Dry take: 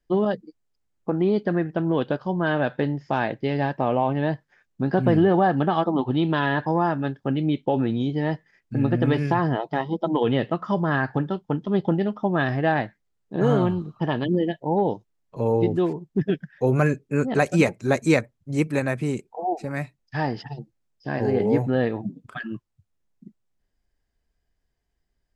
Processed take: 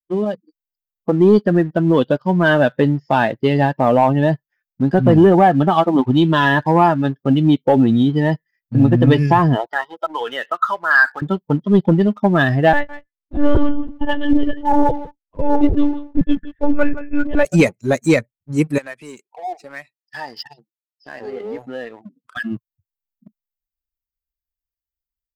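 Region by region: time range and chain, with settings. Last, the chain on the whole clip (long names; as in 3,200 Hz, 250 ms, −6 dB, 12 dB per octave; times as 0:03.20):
0:09.66–0:11.22: downward compressor 2.5 to 1, threshold −24 dBFS + high-pass filter 560 Hz + parametric band 1,500 Hz +11.5 dB 0.56 octaves
0:12.73–0:17.45: single-tap delay 168 ms −10.5 dB + one-pitch LPC vocoder at 8 kHz 290 Hz
0:18.78–0:22.37: meter weighting curve A + downward compressor 2 to 1, threshold −35 dBFS
whole clip: spectral dynamics exaggerated over time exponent 1.5; automatic gain control gain up to 11.5 dB; leveller curve on the samples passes 1; level −1 dB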